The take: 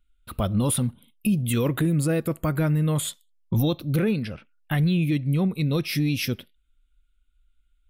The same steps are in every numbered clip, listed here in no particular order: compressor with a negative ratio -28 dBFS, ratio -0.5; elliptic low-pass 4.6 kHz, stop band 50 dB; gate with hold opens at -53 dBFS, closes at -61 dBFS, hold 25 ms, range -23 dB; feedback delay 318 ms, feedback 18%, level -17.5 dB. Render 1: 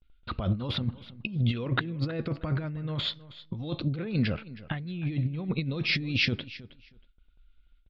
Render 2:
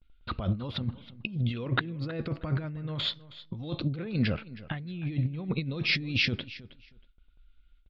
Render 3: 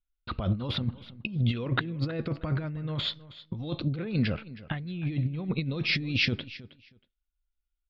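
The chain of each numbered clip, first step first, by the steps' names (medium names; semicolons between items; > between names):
elliptic low-pass > compressor with a negative ratio > gate with hold > feedback delay; compressor with a negative ratio > elliptic low-pass > gate with hold > feedback delay; elliptic low-pass > gate with hold > compressor with a negative ratio > feedback delay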